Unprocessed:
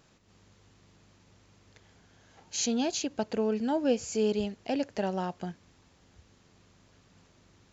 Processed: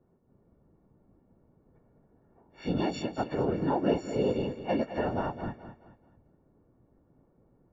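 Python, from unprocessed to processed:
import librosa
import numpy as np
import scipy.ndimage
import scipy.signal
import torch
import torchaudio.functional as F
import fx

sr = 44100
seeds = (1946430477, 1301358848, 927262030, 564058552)

y = fx.freq_snap(x, sr, grid_st=4)
y = scipy.signal.sosfilt(scipy.signal.butter(2, 1600.0, 'lowpass', fs=sr, output='sos'), y)
y = fx.env_lowpass(y, sr, base_hz=410.0, full_db=-30.0)
y = fx.whisperise(y, sr, seeds[0])
y = fx.echo_feedback(y, sr, ms=213, feedback_pct=35, wet_db=-11.5)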